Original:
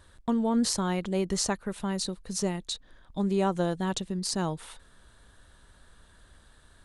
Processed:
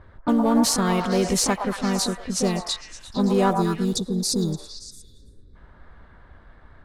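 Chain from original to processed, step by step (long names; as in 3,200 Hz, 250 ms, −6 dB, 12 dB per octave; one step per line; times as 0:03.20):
one scale factor per block 7 bits
gain on a spectral selection 0:03.56–0:05.56, 470–3,400 Hz −27 dB
pitch-shifted copies added +4 semitones −6 dB
in parallel at −3.5 dB: soft clipping −27 dBFS, distortion −9 dB
on the sum: low-pass that shuts in the quiet parts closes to 1,300 Hz, open at −23 dBFS
on a send: echo through a band-pass that steps 114 ms, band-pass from 870 Hz, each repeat 0.7 octaves, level −2.5 dB
on the sum: level +3 dB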